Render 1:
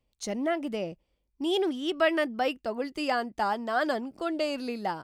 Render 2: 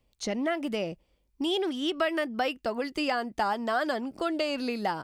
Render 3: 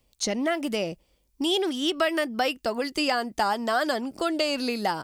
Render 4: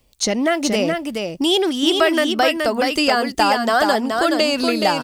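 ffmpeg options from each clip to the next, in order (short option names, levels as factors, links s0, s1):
-filter_complex "[0:a]acrossover=split=1100|5800[s0][s1][s2];[s0]acompressor=threshold=0.02:ratio=4[s3];[s1]acompressor=threshold=0.0141:ratio=4[s4];[s2]acompressor=threshold=0.00126:ratio=4[s5];[s3][s4][s5]amix=inputs=3:normalize=0,volume=1.88"
-af "bass=f=250:g=-1,treble=f=4000:g=8,volume=1.41"
-af "aecho=1:1:424:0.596,volume=2.37"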